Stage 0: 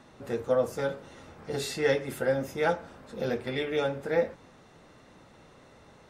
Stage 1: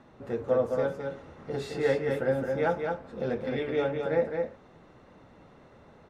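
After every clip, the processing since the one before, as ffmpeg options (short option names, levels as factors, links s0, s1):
-filter_complex "[0:a]lowpass=f=1600:p=1,asplit=2[s0][s1];[s1]aecho=0:1:214:0.596[s2];[s0][s2]amix=inputs=2:normalize=0"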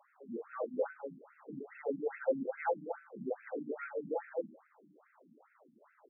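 -af "bandreject=f=79.62:t=h:w=4,bandreject=f=159.24:t=h:w=4,bandreject=f=238.86:t=h:w=4,bandreject=f=318.48:t=h:w=4,bandreject=f=398.1:t=h:w=4,bandreject=f=477.72:t=h:w=4,bandreject=f=557.34:t=h:w=4,bandreject=f=636.96:t=h:w=4,bandreject=f=716.58:t=h:w=4,bandreject=f=796.2:t=h:w=4,bandreject=f=875.82:t=h:w=4,bandreject=f=955.44:t=h:w=4,bandreject=f=1035.06:t=h:w=4,bandreject=f=1114.68:t=h:w=4,bandreject=f=1194.3:t=h:w=4,bandreject=f=1273.92:t=h:w=4,bandreject=f=1353.54:t=h:w=4,bandreject=f=1433.16:t=h:w=4,bandreject=f=1512.78:t=h:w=4,bandreject=f=1592.4:t=h:w=4,bandreject=f=1672.02:t=h:w=4,bandreject=f=1751.64:t=h:w=4,bandreject=f=1831.26:t=h:w=4,bandreject=f=1910.88:t=h:w=4,bandreject=f=1990.5:t=h:w=4,bandreject=f=2070.12:t=h:w=4,bandreject=f=2149.74:t=h:w=4,bandreject=f=2229.36:t=h:w=4,bandreject=f=2308.98:t=h:w=4,bandreject=f=2388.6:t=h:w=4,bandreject=f=2468.22:t=h:w=4,bandreject=f=2547.84:t=h:w=4,bandreject=f=2627.46:t=h:w=4,bandreject=f=2707.08:t=h:w=4,bandreject=f=2786.7:t=h:w=4,bandreject=f=2866.32:t=h:w=4,bandreject=f=2945.94:t=h:w=4,bandreject=f=3025.56:t=h:w=4,bandreject=f=3105.18:t=h:w=4,afftfilt=real='re*between(b*sr/1024,210*pow(1900/210,0.5+0.5*sin(2*PI*2.4*pts/sr))/1.41,210*pow(1900/210,0.5+0.5*sin(2*PI*2.4*pts/sr))*1.41)':imag='im*between(b*sr/1024,210*pow(1900/210,0.5+0.5*sin(2*PI*2.4*pts/sr))/1.41,210*pow(1900/210,0.5+0.5*sin(2*PI*2.4*pts/sr))*1.41)':win_size=1024:overlap=0.75,volume=0.75"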